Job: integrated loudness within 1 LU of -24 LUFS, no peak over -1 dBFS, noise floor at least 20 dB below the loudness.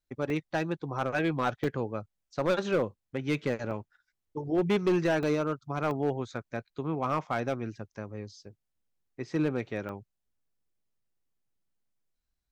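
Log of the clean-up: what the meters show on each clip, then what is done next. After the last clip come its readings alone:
clipped samples 0.8%; clipping level -20.5 dBFS; dropouts 6; longest dropout 1.5 ms; loudness -31.5 LUFS; peak level -20.5 dBFS; loudness target -24.0 LUFS
-> clip repair -20.5 dBFS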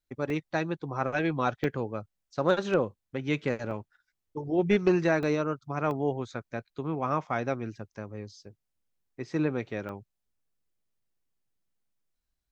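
clipped samples 0.0%; dropouts 6; longest dropout 1.5 ms
-> interpolate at 0.30/1.64/3.71/5.23/5.91/9.89 s, 1.5 ms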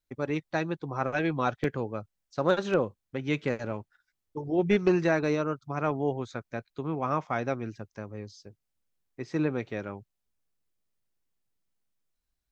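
dropouts 0; loudness -30.0 LUFS; peak level -11.5 dBFS; loudness target -24.0 LUFS
-> trim +6 dB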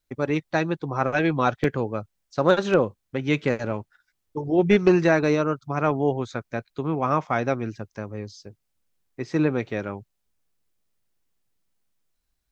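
loudness -24.0 LUFS; peak level -5.5 dBFS; noise floor -77 dBFS

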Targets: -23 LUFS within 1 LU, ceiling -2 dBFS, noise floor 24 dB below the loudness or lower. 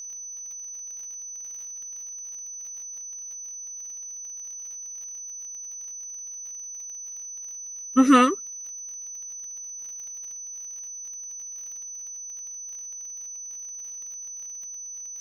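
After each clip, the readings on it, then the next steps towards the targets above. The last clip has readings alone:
tick rate 36 per s; steady tone 6 kHz; tone level -35 dBFS; loudness -30.5 LUFS; peak level -4.0 dBFS; loudness target -23.0 LUFS
-> de-click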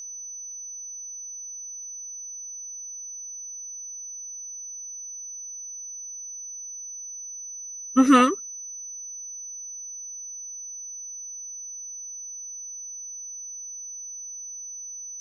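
tick rate 0.13 per s; steady tone 6 kHz; tone level -35 dBFS
-> band-stop 6 kHz, Q 30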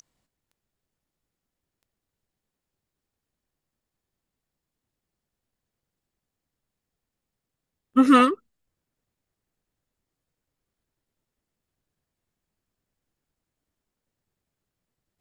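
steady tone not found; loudness -19.0 LUFS; peak level -4.5 dBFS; loudness target -23.0 LUFS
-> trim -4 dB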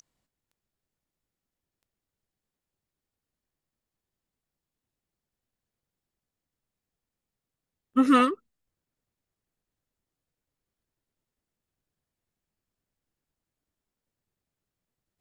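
loudness -23.0 LUFS; peak level -8.5 dBFS; noise floor -89 dBFS

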